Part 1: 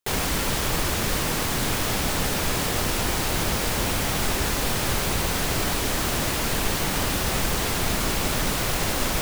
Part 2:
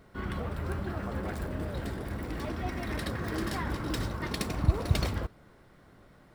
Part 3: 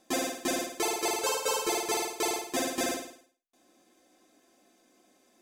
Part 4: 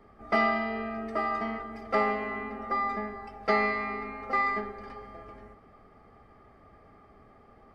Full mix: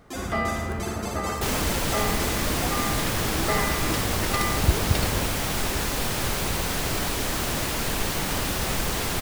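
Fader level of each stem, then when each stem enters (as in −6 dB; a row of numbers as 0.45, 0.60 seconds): −2.0, +2.5, −6.0, −2.5 decibels; 1.35, 0.00, 0.00, 0.00 seconds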